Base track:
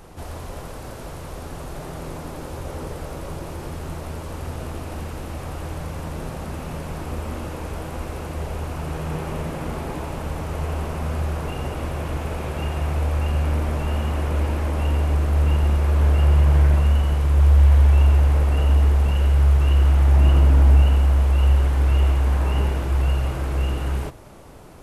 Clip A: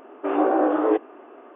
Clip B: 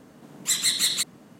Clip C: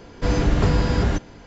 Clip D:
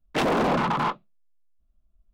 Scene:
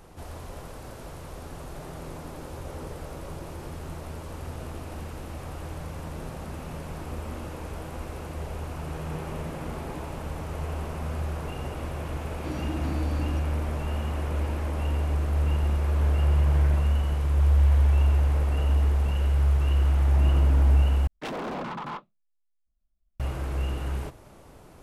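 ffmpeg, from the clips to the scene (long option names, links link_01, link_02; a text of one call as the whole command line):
ffmpeg -i bed.wav -i cue0.wav -i cue1.wav -i cue2.wav -i cue3.wav -filter_complex "[0:a]volume=-6dB[link_01];[3:a]afreqshift=-360[link_02];[link_01]asplit=2[link_03][link_04];[link_03]atrim=end=21.074[link_05];[4:a]atrim=end=2.13,asetpts=PTS-STARTPTS,volume=-10.5dB[link_06];[link_04]atrim=start=23.196[link_07];[link_02]atrim=end=1.46,asetpts=PTS-STARTPTS,volume=-16.5dB,afade=type=in:duration=0.004:curve=hsin,afade=type=out:start_time=1.456:duration=0.004:curve=hsin,adelay=12210[link_08];[link_05][link_06]acrossfade=duration=0.004:curve1=hsin:curve2=hsin[link_09];[link_09][link_07]acrossfade=duration=0.004:curve1=hsin:curve2=hsin[link_10];[link_10][link_08]amix=inputs=2:normalize=0" out.wav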